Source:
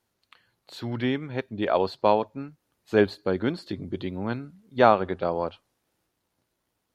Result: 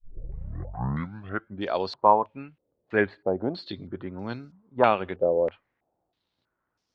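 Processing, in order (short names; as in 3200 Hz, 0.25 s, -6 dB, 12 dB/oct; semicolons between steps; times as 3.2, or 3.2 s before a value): tape start at the beginning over 1.67 s; stepped low-pass 3.1 Hz 520–5400 Hz; gain -4.5 dB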